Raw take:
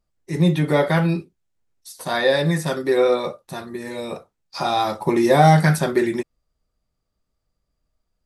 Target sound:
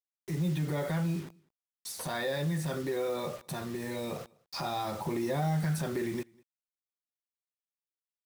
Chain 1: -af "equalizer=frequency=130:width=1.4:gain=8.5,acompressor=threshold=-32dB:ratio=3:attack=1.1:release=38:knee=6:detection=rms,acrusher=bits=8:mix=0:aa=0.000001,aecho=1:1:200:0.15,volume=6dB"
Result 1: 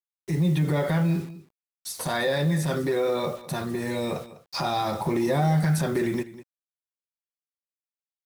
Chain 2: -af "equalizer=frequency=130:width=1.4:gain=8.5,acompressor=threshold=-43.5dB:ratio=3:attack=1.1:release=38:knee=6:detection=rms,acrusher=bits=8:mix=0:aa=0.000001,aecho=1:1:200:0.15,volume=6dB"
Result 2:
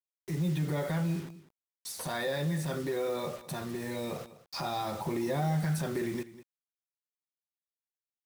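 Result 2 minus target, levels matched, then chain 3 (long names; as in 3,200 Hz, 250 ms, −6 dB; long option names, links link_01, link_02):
echo-to-direct +11 dB
-af "equalizer=frequency=130:width=1.4:gain=8.5,acompressor=threshold=-43.5dB:ratio=3:attack=1.1:release=38:knee=6:detection=rms,acrusher=bits=8:mix=0:aa=0.000001,aecho=1:1:200:0.0422,volume=6dB"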